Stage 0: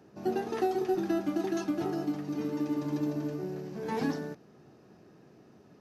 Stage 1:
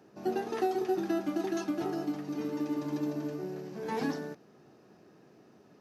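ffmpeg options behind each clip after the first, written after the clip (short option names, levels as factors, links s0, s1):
-af "lowshelf=f=120:g=-11"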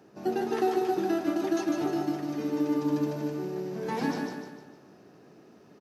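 -af "aecho=1:1:151|302|453|604|755:0.596|0.262|0.115|0.0507|0.0223,volume=1.33"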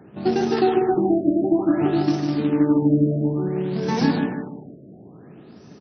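-af "bass=f=250:g=10,treble=f=4000:g=10,acrusher=bits=4:mode=log:mix=0:aa=0.000001,afftfilt=real='re*lt(b*sr/1024,680*pow(6300/680,0.5+0.5*sin(2*PI*0.57*pts/sr)))':imag='im*lt(b*sr/1024,680*pow(6300/680,0.5+0.5*sin(2*PI*0.57*pts/sr)))':win_size=1024:overlap=0.75,volume=2"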